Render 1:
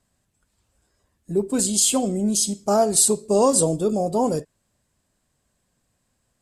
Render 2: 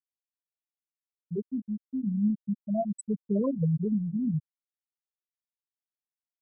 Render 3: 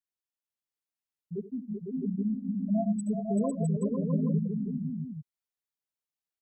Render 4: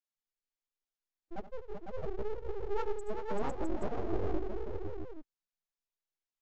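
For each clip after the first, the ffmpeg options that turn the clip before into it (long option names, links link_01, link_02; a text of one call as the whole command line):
ffmpeg -i in.wav -af "asubboost=boost=7:cutoff=180,afftfilt=real='re*gte(hypot(re,im),0.891)':imag='im*gte(hypot(re,im),0.891)':win_size=1024:overlap=0.75,volume=-7.5dB" out.wav
ffmpeg -i in.wav -af "aecho=1:1:74|90|385|503|658|825:0.2|0.133|0.447|0.631|0.596|0.376,volume=-3.5dB" out.wav
ffmpeg -i in.wav -af "aeval=exprs='abs(val(0))':channel_layout=same,volume=-2.5dB" -ar 16000 -c:a libvorbis -b:a 96k out.ogg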